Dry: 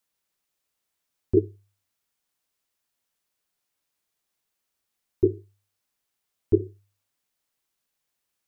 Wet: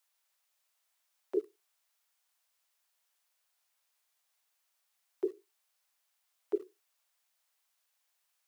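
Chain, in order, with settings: high-pass 600 Hz 24 dB/octave; in parallel at -10.5 dB: small samples zeroed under -49 dBFS; on the sum: trim +2 dB

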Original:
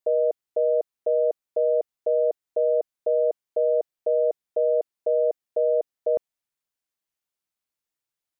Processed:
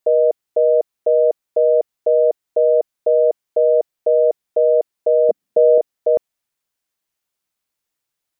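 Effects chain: 5.29–5.78 s: peaking EQ 210 Hz +15 dB 1.2 oct; trim +7.5 dB

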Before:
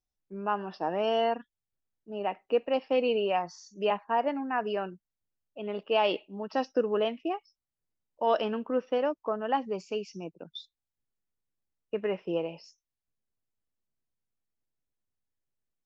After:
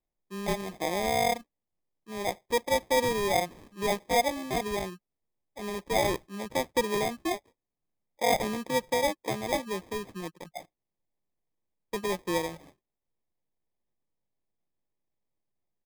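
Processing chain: comb 5.6 ms, depth 32%; sample-and-hold 31×

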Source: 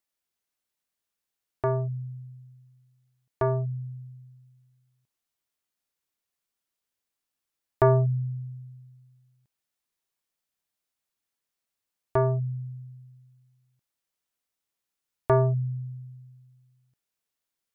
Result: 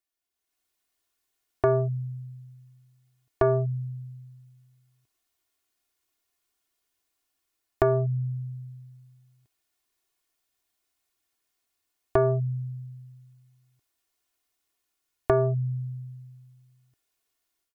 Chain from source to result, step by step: compression 5:1, threshold -25 dBFS, peak gain reduction 8.5 dB; comb 2.8 ms, depth 65%; level rider gain up to 10 dB; trim -5 dB

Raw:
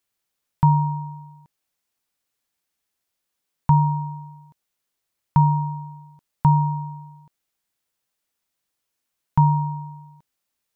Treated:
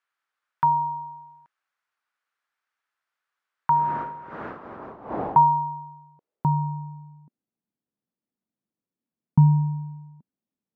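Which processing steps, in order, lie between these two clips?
3.70–5.59 s: wind noise 280 Hz -23 dBFS; band-pass sweep 1.4 kHz -> 220 Hz, 4.46–7.46 s; trim +8.5 dB

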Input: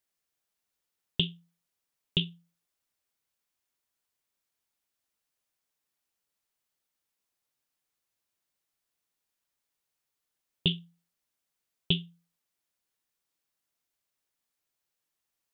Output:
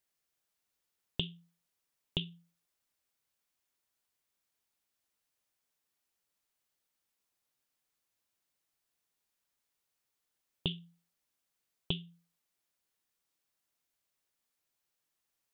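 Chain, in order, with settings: compression 4:1, threshold -32 dBFS, peak gain reduction 10 dB

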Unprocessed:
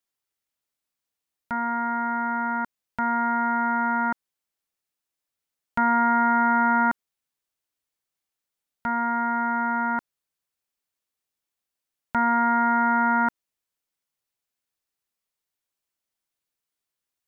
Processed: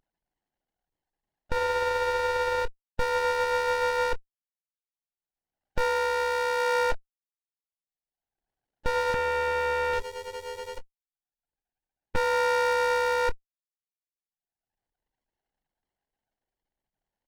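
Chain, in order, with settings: formants replaced by sine waves; gate with hold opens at -22 dBFS; high-pass 450 Hz 6 dB/octave; treble shelf 2 kHz +4 dB; waveshaping leveller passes 1; upward compressor, threshold -49 dBFS; waveshaping leveller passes 1; doubling 24 ms -13 dB; 9.14–12.16 s: bands offset in time lows, highs 790 ms, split 1.6 kHz; sliding maximum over 33 samples

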